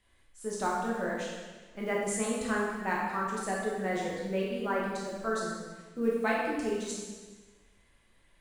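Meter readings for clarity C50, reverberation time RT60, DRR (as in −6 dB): 0.0 dB, 1.4 s, −4.5 dB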